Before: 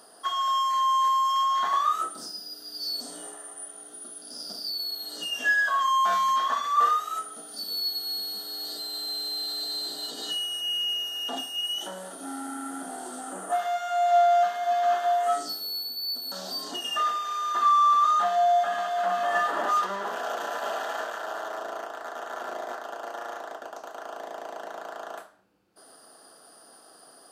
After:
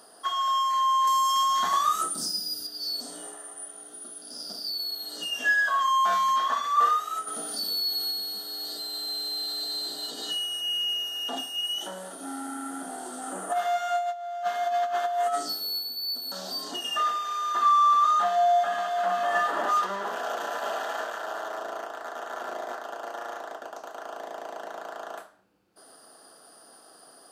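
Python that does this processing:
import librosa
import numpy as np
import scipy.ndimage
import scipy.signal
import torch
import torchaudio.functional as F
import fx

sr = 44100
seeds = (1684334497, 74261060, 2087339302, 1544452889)

y = fx.bass_treble(x, sr, bass_db=13, treble_db=11, at=(1.07, 2.67))
y = fx.env_flatten(y, sr, amount_pct=50, at=(7.27, 8.11))
y = fx.over_compress(y, sr, threshold_db=-25.0, ratio=-0.5, at=(13.21, 15.78), fade=0.02)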